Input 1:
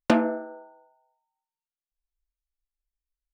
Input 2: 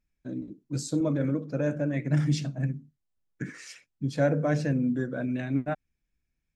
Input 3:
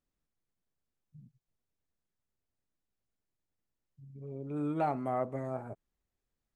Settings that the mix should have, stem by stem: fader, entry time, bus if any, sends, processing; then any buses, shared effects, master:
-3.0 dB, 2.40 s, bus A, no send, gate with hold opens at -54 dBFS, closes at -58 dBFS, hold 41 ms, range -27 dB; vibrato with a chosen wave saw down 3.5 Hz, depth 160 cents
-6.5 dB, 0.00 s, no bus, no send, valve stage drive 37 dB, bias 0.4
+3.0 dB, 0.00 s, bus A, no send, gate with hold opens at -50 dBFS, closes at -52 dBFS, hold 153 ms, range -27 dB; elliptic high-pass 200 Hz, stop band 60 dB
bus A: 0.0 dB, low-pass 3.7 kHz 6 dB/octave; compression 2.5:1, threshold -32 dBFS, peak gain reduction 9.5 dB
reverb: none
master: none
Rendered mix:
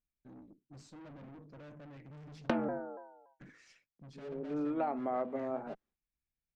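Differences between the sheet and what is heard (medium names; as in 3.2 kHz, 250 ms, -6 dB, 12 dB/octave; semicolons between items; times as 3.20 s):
stem 2 -6.5 dB -> -12.5 dB; master: extra distance through air 90 m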